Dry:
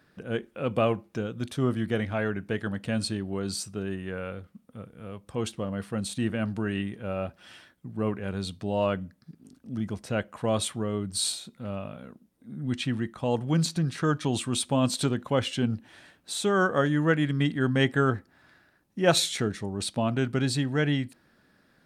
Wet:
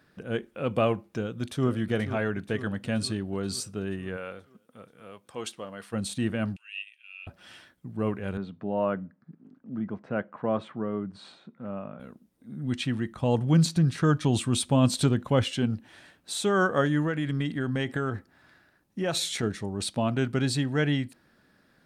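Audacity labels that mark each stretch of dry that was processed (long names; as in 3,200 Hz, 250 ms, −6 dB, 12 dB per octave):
1.100000	1.680000	delay throw 480 ms, feedback 65%, level −11.5 dB
4.160000	5.920000	high-pass filter 380 Hz → 870 Hz 6 dB per octave
6.560000	7.270000	four-pole ladder high-pass 2,500 Hz, resonance 85%
8.370000	12.000000	Chebyshev band-pass filter 170–1,500 Hz
13.100000	15.440000	low-shelf EQ 170 Hz +8.5 dB
17.020000	19.430000	downward compressor, threshold −24 dBFS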